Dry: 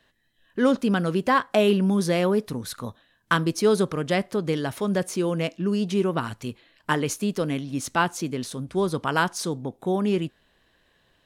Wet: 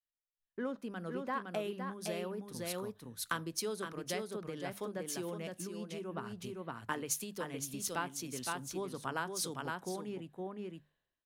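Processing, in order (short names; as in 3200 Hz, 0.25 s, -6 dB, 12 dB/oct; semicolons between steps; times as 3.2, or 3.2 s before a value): high shelf 12000 Hz +11.5 dB; echo 0.513 s -4.5 dB; compressor 6:1, threshold -28 dBFS, peak gain reduction 13.5 dB; low shelf 270 Hz -4 dB; notches 50/100/150/200 Hz; three-band expander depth 100%; gain -7 dB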